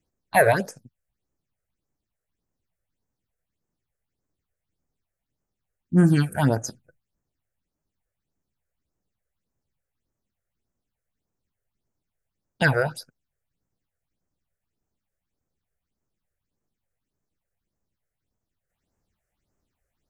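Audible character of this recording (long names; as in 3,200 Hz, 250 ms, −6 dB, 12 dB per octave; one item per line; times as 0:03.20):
phaser sweep stages 6, 1.7 Hz, lowest notch 240–3,900 Hz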